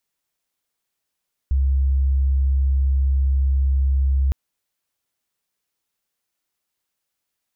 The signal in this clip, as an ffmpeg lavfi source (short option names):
-f lavfi -i "aevalsrc='0.178*sin(2*PI*67.4*t)':d=2.81:s=44100"